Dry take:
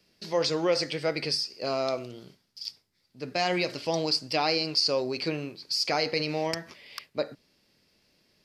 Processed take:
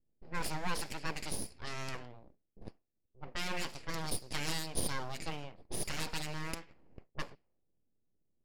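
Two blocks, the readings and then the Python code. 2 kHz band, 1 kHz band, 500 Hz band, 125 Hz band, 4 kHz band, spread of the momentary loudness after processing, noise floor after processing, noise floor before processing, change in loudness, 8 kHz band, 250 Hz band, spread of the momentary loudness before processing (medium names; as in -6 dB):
-7.0 dB, -10.0 dB, -18.0 dB, -5.0 dB, -14.0 dB, 15 LU, -81 dBFS, -72 dBFS, -11.5 dB, -1.0 dB, -11.5 dB, 14 LU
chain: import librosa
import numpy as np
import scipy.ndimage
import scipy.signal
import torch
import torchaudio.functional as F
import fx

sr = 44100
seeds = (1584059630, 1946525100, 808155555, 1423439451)

y = fx.lower_of_two(x, sr, delay_ms=0.4)
y = np.abs(y)
y = fx.env_lowpass(y, sr, base_hz=330.0, full_db=-27.5)
y = F.gain(torch.from_numpy(y), -6.0).numpy()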